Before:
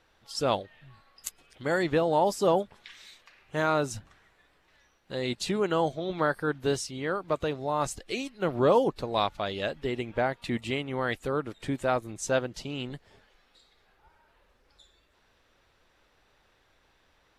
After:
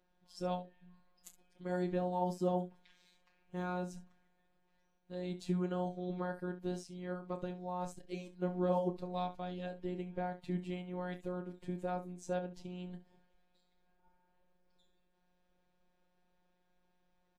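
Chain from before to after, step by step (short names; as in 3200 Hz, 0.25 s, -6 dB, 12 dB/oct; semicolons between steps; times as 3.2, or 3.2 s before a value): EQ curve 140 Hz 0 dB, 230 Hz +4 dB, 1700 Hz -11 dB; robotiser 180 Hz; early reflections 29 ms -10 dB, 68 ms -15 dB; gain -5.5 dB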